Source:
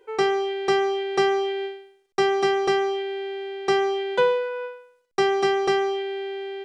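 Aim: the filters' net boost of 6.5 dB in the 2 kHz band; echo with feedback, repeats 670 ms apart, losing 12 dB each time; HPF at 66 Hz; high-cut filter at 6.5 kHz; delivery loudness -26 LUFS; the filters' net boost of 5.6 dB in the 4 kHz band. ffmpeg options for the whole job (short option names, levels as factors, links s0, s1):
-af "highpass=66,lowpass=6500,equalizer=f=2000:t=o:g=7,equalizer=f=4000:t=o:g=5,aecho=1:1:670|1340|2010:0.251|0.0628|0.0157,volume=0.631"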